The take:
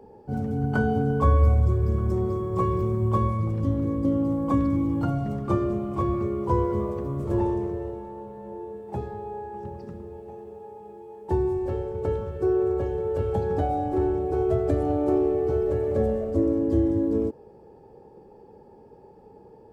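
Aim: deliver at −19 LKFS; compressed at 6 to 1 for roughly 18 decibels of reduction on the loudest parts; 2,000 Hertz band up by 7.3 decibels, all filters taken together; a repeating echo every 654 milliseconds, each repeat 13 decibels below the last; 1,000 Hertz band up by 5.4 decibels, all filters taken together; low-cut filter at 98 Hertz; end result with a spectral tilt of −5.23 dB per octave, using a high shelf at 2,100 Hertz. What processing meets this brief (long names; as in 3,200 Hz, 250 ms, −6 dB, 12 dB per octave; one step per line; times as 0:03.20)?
high-pass filter 98 Hz
parametric band 1,000 Hz +4 dB
parametric band 2,000 Hz +5.5 dB
high-shelf EQ 2,100 Hz +6.5 dB
downward compressor 6 to 1, threshold −36 dBFS
repeating echo 654 ms, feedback 22%, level −13 dB
level +19.5 dB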